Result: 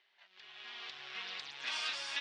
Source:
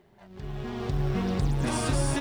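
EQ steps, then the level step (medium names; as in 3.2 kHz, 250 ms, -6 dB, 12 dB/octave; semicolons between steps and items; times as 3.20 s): ladder band-pass 4.1 kHz, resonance 20%; distance through air 190 m; +17.5 dB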